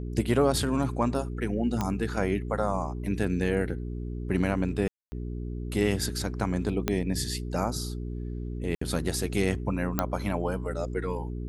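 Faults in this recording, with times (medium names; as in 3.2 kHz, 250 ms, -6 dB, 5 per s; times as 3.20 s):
hum 60 Hz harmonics 7 -34 dBFS
1.81 s: pop -14 dBFS
4.88–5.12 s: dropout 240 ms
6.88 s: pop -10 dBFS
8.75–8.81 s: dropout 64 ms
9.99 s: pop -9 dBFS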